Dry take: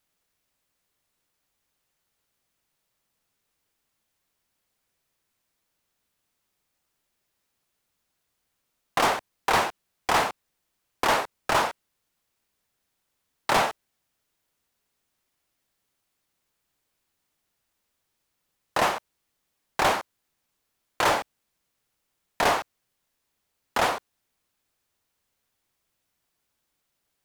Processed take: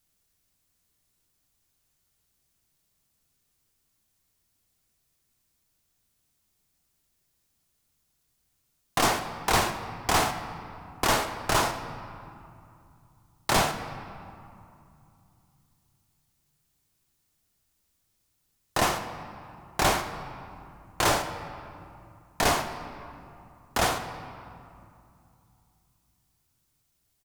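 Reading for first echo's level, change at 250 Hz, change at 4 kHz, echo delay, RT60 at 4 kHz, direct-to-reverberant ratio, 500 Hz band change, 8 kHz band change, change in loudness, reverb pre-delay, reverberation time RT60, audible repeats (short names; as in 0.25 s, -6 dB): -14.5 dB, +3.0 dB, +1.0 dB, 79 ms, 1.5 s, 6.5 dB, -1.5 dB, +4.5 dB, -1.5 dB, 3 ms, 2.6 s, 1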